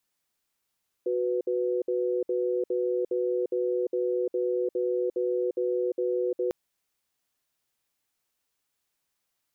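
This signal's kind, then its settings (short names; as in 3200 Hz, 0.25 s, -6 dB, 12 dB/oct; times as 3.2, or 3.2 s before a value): cadence 368 Hz, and 495 Hz, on 0.35 s, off 0.06 s, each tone -27 dBFS 5.45 s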